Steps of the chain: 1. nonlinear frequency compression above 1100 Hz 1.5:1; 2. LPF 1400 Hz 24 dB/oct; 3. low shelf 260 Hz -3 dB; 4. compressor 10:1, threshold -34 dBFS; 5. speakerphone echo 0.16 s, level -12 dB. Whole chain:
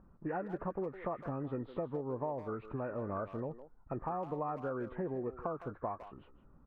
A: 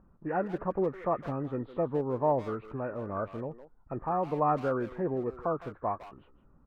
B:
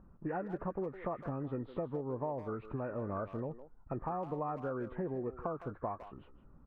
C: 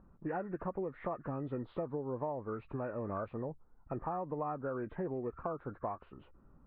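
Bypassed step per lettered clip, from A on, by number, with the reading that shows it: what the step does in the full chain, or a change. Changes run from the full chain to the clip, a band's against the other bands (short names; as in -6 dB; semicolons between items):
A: 4, mean gain reduction 4.5 dB; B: 3, 125 Hz band +1.5 dB; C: 5, echo-to-direct -17.5 dB to none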